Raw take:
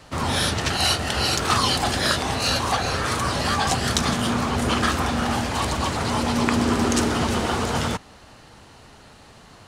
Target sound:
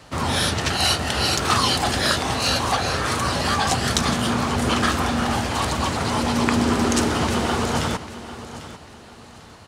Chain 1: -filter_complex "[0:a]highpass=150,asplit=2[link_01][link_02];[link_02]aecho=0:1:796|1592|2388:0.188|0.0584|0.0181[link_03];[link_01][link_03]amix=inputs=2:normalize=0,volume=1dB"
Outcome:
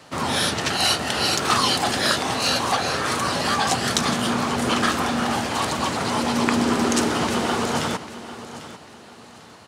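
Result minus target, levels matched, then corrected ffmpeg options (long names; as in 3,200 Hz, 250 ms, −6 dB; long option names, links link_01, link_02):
125 Hz band −5.5 dB
-filter_complex "[0:a]highpass=43,asplit=2[link_01][link_02];[link_02]aecho=0:1:796|1592|2388:0.188|0.0584|0.0181[link_03];[link_01][link_03]amix=inputs=2:normalize=0,volume=1dB"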